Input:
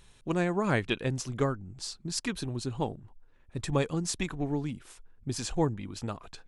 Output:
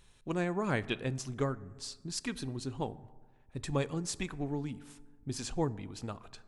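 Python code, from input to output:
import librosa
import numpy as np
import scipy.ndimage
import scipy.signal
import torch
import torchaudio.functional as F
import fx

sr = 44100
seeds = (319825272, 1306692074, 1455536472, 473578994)

y = fx.rev_fdn(x, sr, rt60_s=1.5, lf_ratio=1.05, hf_ratio=0.4, size_ms=23.0, drr_db=16.5)
y = y * librosa.db_to_amplitude(-4.5)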